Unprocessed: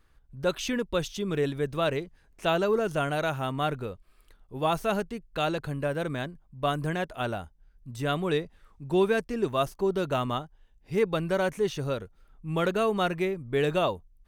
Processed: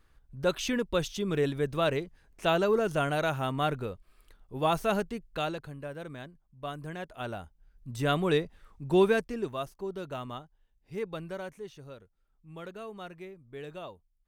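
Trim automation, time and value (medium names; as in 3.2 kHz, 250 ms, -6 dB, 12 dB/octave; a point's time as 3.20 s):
5.27 s -0.5 dB
5.73 s -10.5 dB
6.84 s -10.5 dB
7.94 s +1 dB
9.07 s +1 dB
9.67 s -10 dB
11.22 s -10 dB
11.72 s -16.5 dB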